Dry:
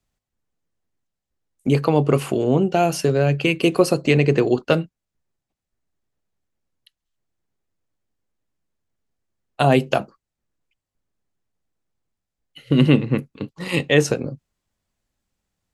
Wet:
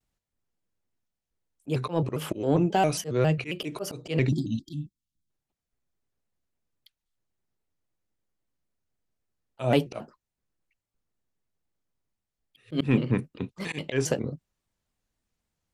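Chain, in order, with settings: slow attack 161 ms; spectral selection erased 4.28–5.30 s, 340–2900 Hz; in parallel at -7 dB: saturation -15 dBFS, distortion -11 dB; on the sum: vibrato with a chosen wave square 3.7 Hz, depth 160 cents; trim -7 dB

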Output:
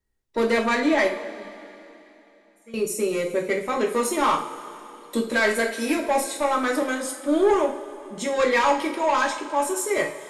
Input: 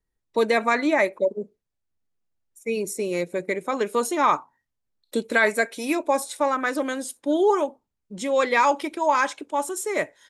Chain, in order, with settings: saturation -18 dBFS, distortion -12 dB; 1.19–2.74 s: feedback comb 200 Hz, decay 0.62 s, harmonics odd, mix 90%; two-slope reverb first 0.38 s, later 3.2 s, from -18 dB, DRR -0.5 dB

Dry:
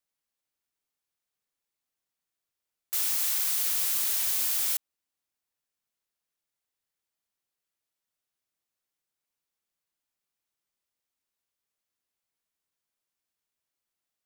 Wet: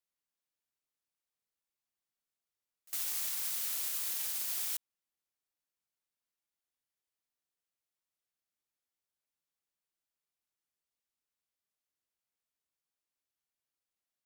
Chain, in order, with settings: wow and flutter 18 cents; peak limiter -19.5 dBFS, peak gain reduction 4 dB; pre-echo 57 ms -23.5 dB; trim -6 dB

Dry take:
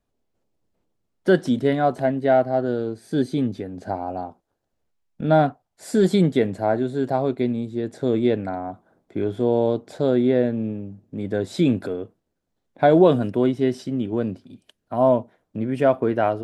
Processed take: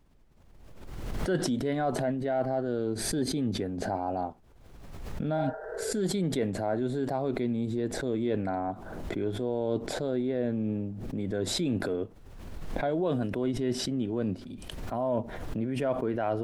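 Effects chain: vibrato 1.3 Hz 29 cents; reverse; compression 6:1, threshold -27 dBFS, peak gain reduction 16.5 dB; reverse; spectral replace 5.40–5.89 s, 350–2000 Hz both; added noise brown -62 dBFS; swell ahead of each attack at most 35 dB/s

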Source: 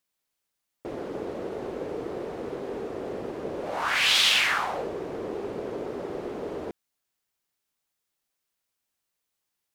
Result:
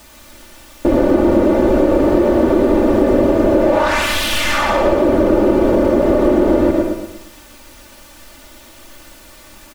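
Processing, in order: in parallel at -7.5 dB: sine folder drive 17 dB, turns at -8 dBFS; on the sum: waveshaping leveller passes 1; added noise white -40 dBFS; comb 3.4 ms, depth 95%; feedback delay 117 ms, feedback 41%, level -8 dB; on a send at -5 dB: reverberation RT60 0.50 s, pre-delay 80 ms; on the sum: compression, threshold -11 dBFS, peak gain reduction 6.5 dB; tilt EQ -2.5 dB/octave; trim -1 dB

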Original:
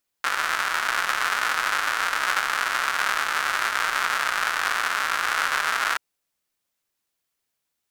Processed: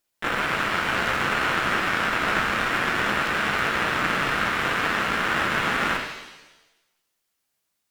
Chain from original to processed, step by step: one-sided clip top -29 dBFS; harmony voices +4 st -4 dB; pitch-shifted reverb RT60 1 s, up +7 st, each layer -8 dB, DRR 3 dB

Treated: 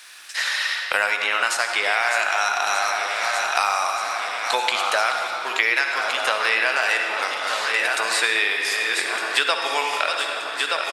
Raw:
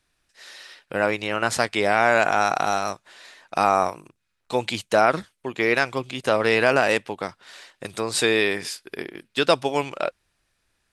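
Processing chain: backward echo that repeats 613 ms, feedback 58%, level -11 dB; high-pass 1.2 kHz 12 dB/octave; level rider gain up to 5 dB; short-mantissa float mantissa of 6-bit; doubling 14 ms -13 dB; on a send at -4 dB: reverberation RT60 1.3 s, pre-delay 47 ms; on the sum: three bands compressed up and down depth 100%; trim -1 dB

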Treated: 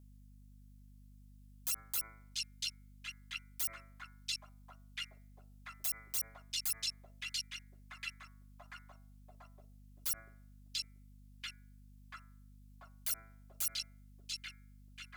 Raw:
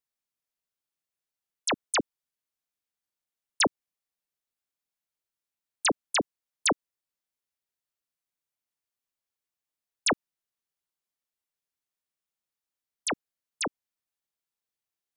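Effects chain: bit-reversed sample order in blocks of 256 samples; on a send: repeats whose band climbs or falls 687 ms, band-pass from 3.7 kHz, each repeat -0.7 oct, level -9 dB; on the sum: vibrato 11 Hz 42 cents; bass shelf 300 Hz -11.5 dB; de-hum 111.7 Hz, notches 21; in parallel at -4.5 dB: hard clipper -31.5 dBFS, distortion -5 dB; on the sum: treble shelf 4.4 kHz +11 dB; peak limiter -25 dBFS, peak gain reduction 21 dB; hum 50 Hz, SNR 13 dB; trim -2.5 dB

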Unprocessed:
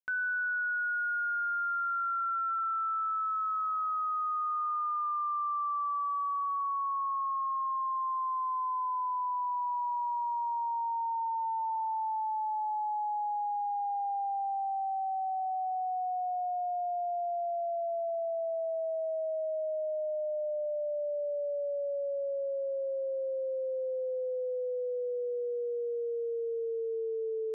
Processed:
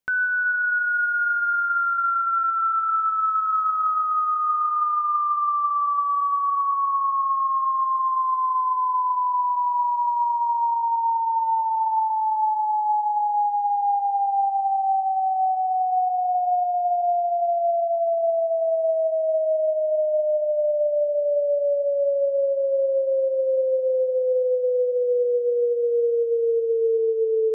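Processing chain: bass shelf 490 Hz +7 dB; on a send: reverberation RT60 4.7 s, pre-delay 54 ms, DRR 11.5 dB; on the sum: trim +8.5 dB

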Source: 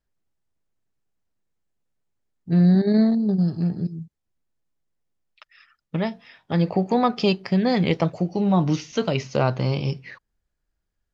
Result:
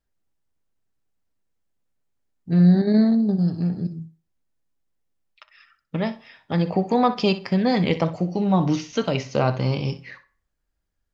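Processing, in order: flutter echo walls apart 10.6 m, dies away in 0.26 s; on a send at -11 dB: reverberation RT60 0.45 s, pre-delay 4 ms

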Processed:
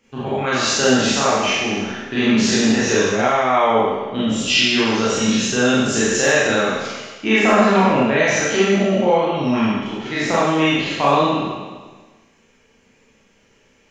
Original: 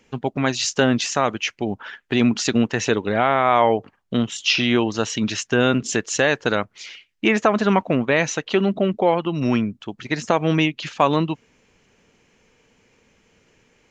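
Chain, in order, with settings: spectral sustain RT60 1.41 s; hard clipper -2.5 dBFS, distortion -42 dB; Schroeder reverb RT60 0.42 s, combs from 28 ms, DRR -6 dB; trim -7 dB

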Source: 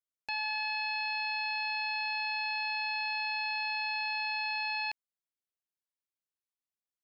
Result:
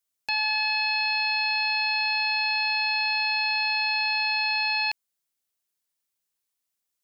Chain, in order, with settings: treble shelf 3.8 kHz +8.5 dB; trim +6 dB

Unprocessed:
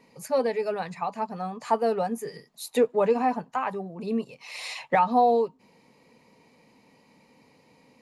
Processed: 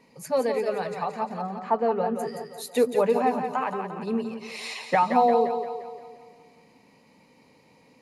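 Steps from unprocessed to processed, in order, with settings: 1.41–2.18 s: low-pass 1.7 kHz -> 3.1 kHz 12 dB/octave; two-band feedback delay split 330 Hz, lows 94 ms, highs 174 ms, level -7 dB

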